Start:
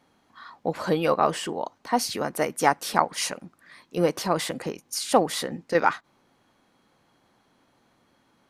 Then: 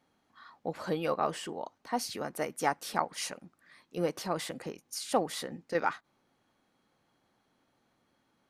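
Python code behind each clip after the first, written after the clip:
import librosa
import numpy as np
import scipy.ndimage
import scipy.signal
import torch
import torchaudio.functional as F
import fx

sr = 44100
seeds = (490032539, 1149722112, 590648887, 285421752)

y = fx.notch(x, sr, hz=1000.0, q=21.0)
y = y * 10.0 ** (-8.5 / 20.0)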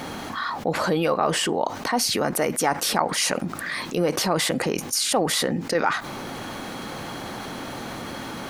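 y = fx.env_flatten(x, sr, amount_pct=70)
y = y * 10.0 ** (4.0 / 20.0)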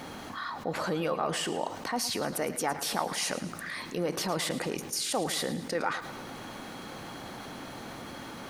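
y = fx.echo_feedback(x, sr, ms=110, feedback_pct=53, wet_db=-13.5)
y = y * 10.0 ** (-8.5 / 20.0)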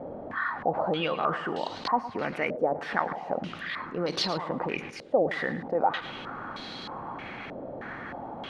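y = fx.filter_held_lowpass(x, sr, hz=3.2, low_hz=580.0, high_hz=4100.0)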